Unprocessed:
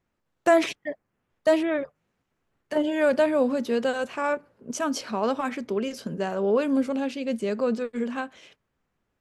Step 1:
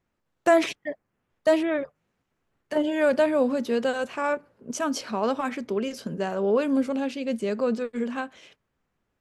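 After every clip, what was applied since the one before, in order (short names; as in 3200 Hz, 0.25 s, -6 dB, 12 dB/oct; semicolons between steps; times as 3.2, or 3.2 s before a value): nothing audible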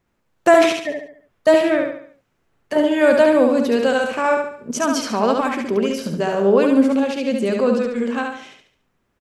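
feedback echo 71 ms, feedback 42%, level -4 dB; gain +6.5 dB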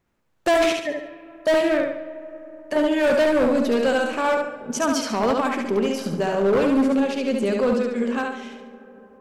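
overloaded stage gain 13 dB; digital reverb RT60 4.5 s, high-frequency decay 0.3×, pre-delay 75 ms, DRR 16.5 dB; gain -2 dB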